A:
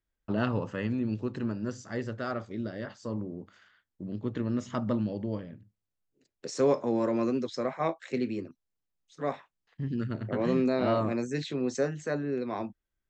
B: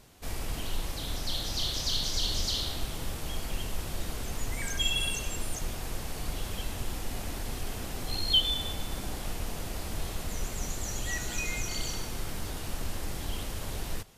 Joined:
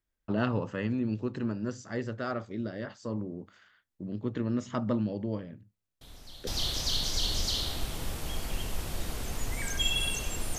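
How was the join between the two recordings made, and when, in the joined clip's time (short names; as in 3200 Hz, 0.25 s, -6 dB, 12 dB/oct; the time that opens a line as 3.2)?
A
6.01 add B from 1.01 s 0.46 s -16 dB
6.47 switch to B from 1.47 s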